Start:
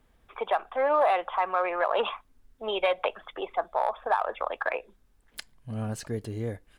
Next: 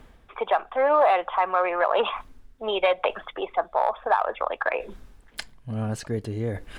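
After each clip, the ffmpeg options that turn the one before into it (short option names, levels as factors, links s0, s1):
-af "highshelf=f=7800:g=-9,areverse,acompressor=mode=upward:threshold=0.0282:ratio=2.5,areverse,volume=1.58"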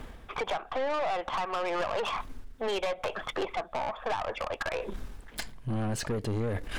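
-af "acompressor=threshold=0.0355:ratio=12,aeval=exprs='(tanh(56.2*val(0)+0.4)-tanh(0.4))/56.2':c=same,volume=2.51"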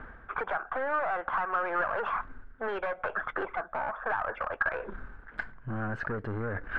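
-af "lowpass=f=1500:t=q:w=6.1,volume=0.631"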